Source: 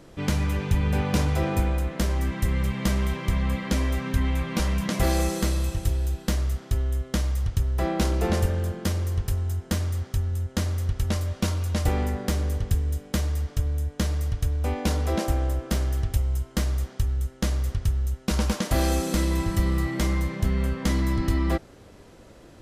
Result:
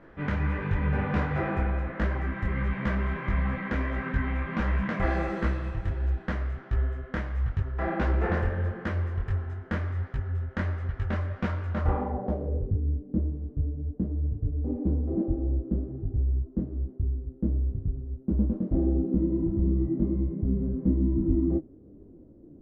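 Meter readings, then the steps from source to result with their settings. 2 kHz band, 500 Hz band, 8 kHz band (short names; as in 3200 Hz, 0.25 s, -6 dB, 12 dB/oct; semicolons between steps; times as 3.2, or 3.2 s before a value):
-0.5 dB, -2.5 dB, under -30 dB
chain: low-pass sweep 1700 Hz -> 310 Hz, 11.66–12.84; detuned doubles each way 51 cents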